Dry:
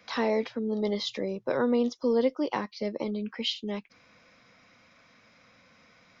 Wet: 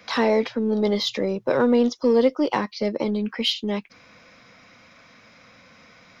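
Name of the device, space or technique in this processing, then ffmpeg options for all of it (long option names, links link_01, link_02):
parallel distortion: -filter_complex "[0:a]asplit=2[link_01][link_02];[link_02]asoftclip=type=hard:threshold=-31.5dB,volume=-11dB[link_03];[link_01][link_03]amix=inputs=2:normalize=0,volume=6dB"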